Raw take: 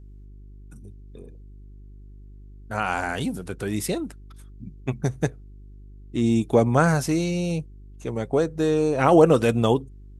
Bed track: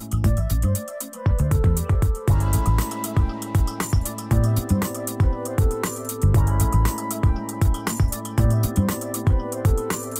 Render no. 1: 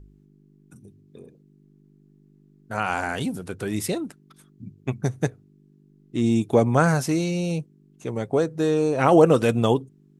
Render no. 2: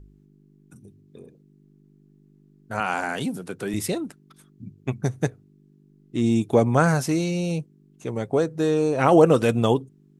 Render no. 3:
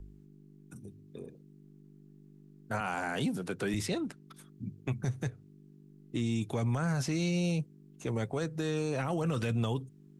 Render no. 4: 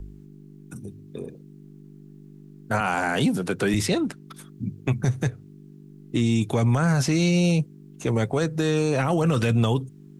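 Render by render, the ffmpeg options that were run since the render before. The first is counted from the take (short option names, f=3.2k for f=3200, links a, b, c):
-af "bandreject=f=50:t=h:w=4,bandreject=f=100:t=h:w=4"
-filter_complex "[0:a]asettb=1/sr,asplit=3[a][b][c];[a]atrim=end=2.804[d];[b]atrim=start=2.8:end=3.74,asetpts=PTS-STARTPTS,afade=t=in:d=0.004:c=qsin,afade=t=out:st=0.936:d=0.004:c=qsin,highpass=f=130:w=0.5412,highpass=f=130:w=1.3066[e];[c]atrim=start=3.736[f];[d][e]acrossfade=d=0.004:c1=hsin:c2=qsin[g];[g][f]acrossfade=d=0.004:c1=qsin:c2=hsin"
-filter_complex "[0:a]acrossover=split=170|1200|6800[a][b][c][d];[a]acompressor=threshold=-26dB:ratio=4[e];[b]acompressor=threshold=-32dB:ratio=4[f];[c]acompressor=threshold=-35dB:ratio=4[g];[d]acompressor=threshold=-55dB:ratio=4[h];[e][f][g][h]amix=inputs=4:normalize=0,alimiter=limit=-23.5dB:level=0:latency=1:release=12"
-af "volume=10dB"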